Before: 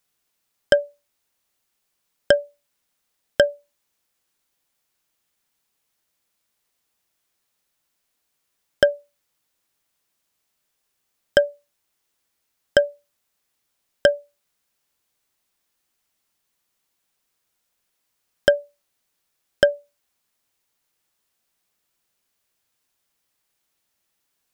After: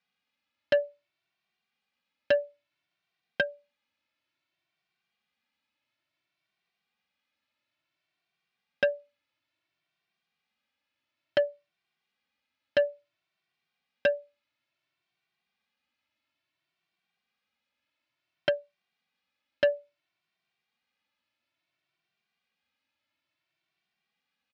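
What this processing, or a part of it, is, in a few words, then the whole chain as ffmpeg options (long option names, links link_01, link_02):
barber-pole flanger into a guitar amplifier: -filter_complex "[0:a]asplit=2[link_01][link_02];[link_02]adelay=2.1,afreqshift=0.58[link_03];[link_01][link_03]amix=inputs=2:normalize=1,asoftclip=type=tanh:threshold=-15.5dB,highpass=110,equalizer=frequency=440:width_type=q:width=4:gain=-10,equalizer=frequency=990:width_type=q:width=4:gain=-3,equalizer=frequency=2400:width_type=q:width=4:gain=5,lowpass=frequency=4200:width=0.5412,lowpass=frequency=4200:width=1.3066"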